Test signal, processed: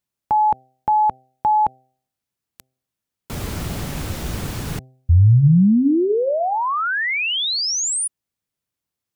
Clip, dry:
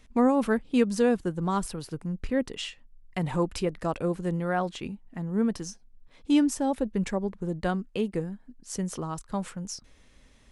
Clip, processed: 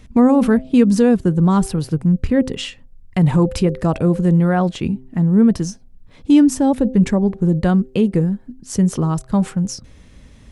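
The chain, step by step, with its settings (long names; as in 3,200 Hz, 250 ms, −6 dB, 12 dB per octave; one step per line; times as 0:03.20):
parametric band 110 Hz +12 dB 2.9 octaves
hum removal 129.6 Hz, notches 6
in parallel at +3 dB: brickwall limiter −16 dBFS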